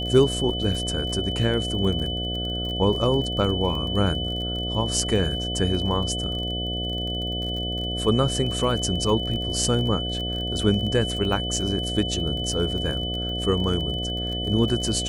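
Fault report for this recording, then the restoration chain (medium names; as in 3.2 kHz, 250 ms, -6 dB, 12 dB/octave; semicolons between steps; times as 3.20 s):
buzz 60 Hz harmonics 12 -30 dBFS
crackle 33 per s -30 dBFS
whine 3 kHz -29 dBFS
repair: de-click; de-hum 60 Hz, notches 12; band-stop 3 kHz, Q 30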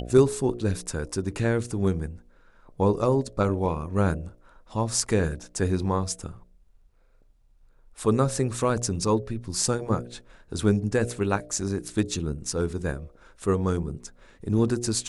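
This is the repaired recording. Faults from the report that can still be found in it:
nothing left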